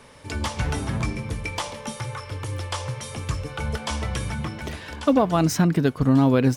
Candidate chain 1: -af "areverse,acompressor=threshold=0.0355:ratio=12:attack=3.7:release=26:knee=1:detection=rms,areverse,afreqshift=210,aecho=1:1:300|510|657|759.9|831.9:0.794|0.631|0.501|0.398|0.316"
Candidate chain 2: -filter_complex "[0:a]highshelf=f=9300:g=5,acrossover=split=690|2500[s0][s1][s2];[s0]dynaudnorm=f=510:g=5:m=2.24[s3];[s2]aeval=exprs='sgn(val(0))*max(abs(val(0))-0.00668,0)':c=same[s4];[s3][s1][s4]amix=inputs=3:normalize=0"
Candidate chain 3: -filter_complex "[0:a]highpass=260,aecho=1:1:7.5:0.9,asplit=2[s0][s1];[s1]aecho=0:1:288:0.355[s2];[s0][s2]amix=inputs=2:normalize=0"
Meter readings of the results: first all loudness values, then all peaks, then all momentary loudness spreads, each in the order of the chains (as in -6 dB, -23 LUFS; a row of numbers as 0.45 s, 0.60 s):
-29.0 LUFS, -21.5 LUFS, -24.0 LUFS; -16.5 dBFS, -3.0 dBFS, -3.0 dBFS; 2 LU, 12 LU, 15 LU